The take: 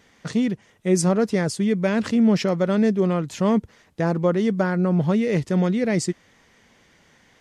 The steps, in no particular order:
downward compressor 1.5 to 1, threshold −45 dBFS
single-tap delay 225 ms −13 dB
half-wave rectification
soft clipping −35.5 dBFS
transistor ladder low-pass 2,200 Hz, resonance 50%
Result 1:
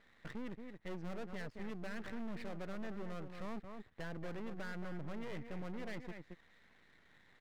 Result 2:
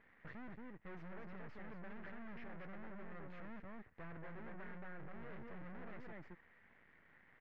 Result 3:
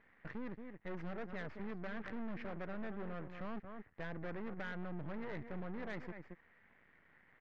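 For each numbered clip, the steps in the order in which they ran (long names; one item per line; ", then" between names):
transistor ladder low-pass, then half-wave rectification, then single-tap delay, then downward compressor, then soft clipping
half-wave rectification, then single-tap delay, then soft clipping, then transistor ladder low-pass, then downward compressor
single-tap delay, then half-wave rectification, then transistor ladder low-pass, then downward compressor, then soft clipping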